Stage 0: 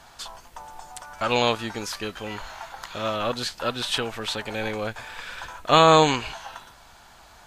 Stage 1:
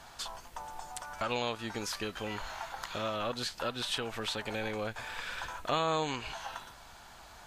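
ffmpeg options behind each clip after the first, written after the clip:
-af "acompressor=threshold=-32dB:ratio=2.5,volume=-2dB"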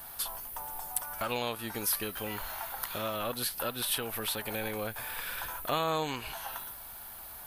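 -af "aexciter=amount=7.3:drive=9.9:freq=10k"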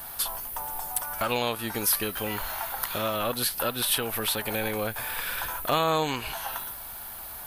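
-af "volume=19dB,asoftclip=hard,volume=-19dB,volume=6dB"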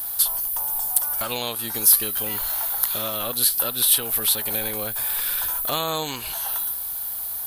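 -af "aexciter=amount=2.8:drive=5.3:freq=3.4k,volume=-2.5dB"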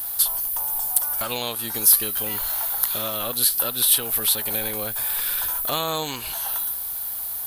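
-af "acrusher=bits=7:mix=0:aa=0.000001"

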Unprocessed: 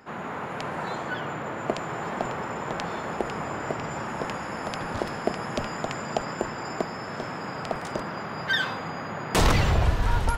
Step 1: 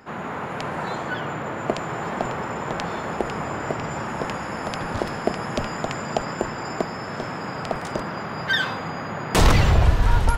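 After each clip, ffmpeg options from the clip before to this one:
-af "lowshelf=f=130:g=3.5,volume=3dB"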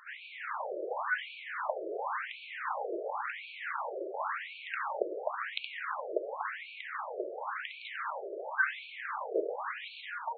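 -af "acompressor=threshold=-18dB:ratio=6,equalizer=f=700:w=4.6:g=-9,afftfilt=real='re*between(b*sr/1024,470*pow(3200/470,0.5+0.5*sin(2*PI*0.93*pts/sr))/1.41,470*pow(3200/470,0.5+0.5*sin(2*PI*0.93*pts/sr))*1.41)':imag='im*between(b*sr/1024,470*pow(3200/470,0.5+0.5*sin(2*PI*0.93*pts/sr))/1.41,470*pow(3200/470,0.5+0.5*sin(2*PI*0.93*pts/sr))*1.41)':win_size=1024:overlap=0.75"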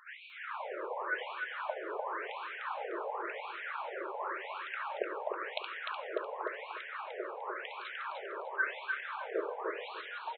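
-af "aecho=1:1:300|600|900:0.631|0.133|0.0278,volume=-3.5dB"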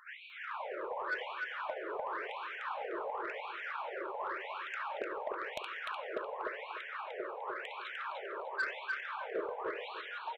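-af "asoftclip=type=tanh:threshold=-27.5dB"

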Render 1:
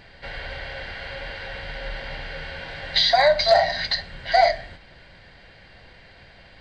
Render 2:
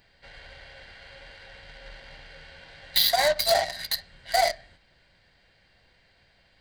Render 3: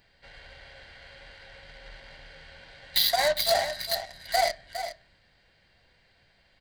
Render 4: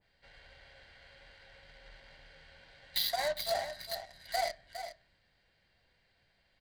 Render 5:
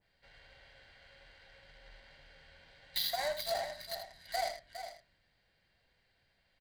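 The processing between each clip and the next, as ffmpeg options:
-af "aeval=exprs='0.447*(cos(1*acos(clip(val(0)/0.447,-1,1)))-cos(1*PI/2))+0.0398*(cos(7*acos(clip(val(0)/0.447,-1,1)))-cos(7*PI/2))':c=same,aemphasis=mode=production:type=50fm,volume=-6dB"
-af "aecho=1:1:409:0.316,volume=-2dB"
-af "adynamicequalizer=threshold=0.0112:dfrequency=1700:dqfactor=0.7:tfrequency=1700:tqfactor=0.7:attack=5:release=100:ratio=0.375:range=2:mode=cutabove:tftype=highshelf,volume=-8.5dB"
-af "aecho=1:1:80:0.335,volume=-2.5dB"

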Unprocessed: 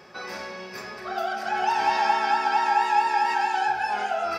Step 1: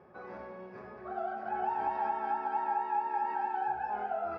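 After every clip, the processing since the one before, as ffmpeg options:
-af "lowpass=1k,equalizer=f=77:w=1.7:g=5,alimiter=limit=-17dB:level=0:latency=1:release=215,volume=-6dB"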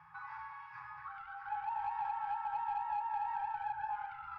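-filter_complex "[0:a]asplit=2[a][b];[b]highpass=f=720:p=1,volume=10dB,asoftclip=type=tanh:threshold=-22.5dB[c];[a][c]amix=inputs=2:normalize=0,lowpass=f=2.4k:p=1,volume=-6dB,acrossover=split=410|1000[d][e][f];[d]acompressor=threshold=-54dB:ratio=4[g];[e]acompressor=threshold=-40dB:ratio=4[h];[f]acompressor=threshold=-50dB:ratio=4[i];[g][h][i]amix=inputs=3:normalize=0,afftfilt=real='re*(1-between(b*sr/4096,170,790))':imag='im*(1-between(b*sr/4096,170,790))':win_size=4096:overlap=0.75,volume=1.5dB"

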